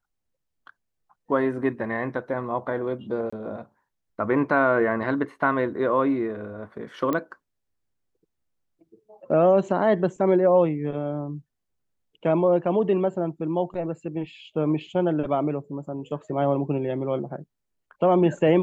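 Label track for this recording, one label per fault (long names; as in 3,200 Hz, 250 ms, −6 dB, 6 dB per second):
3.300000	3.330000	drop-out 25 ms
7.130000	7.130000	click −14 dBFS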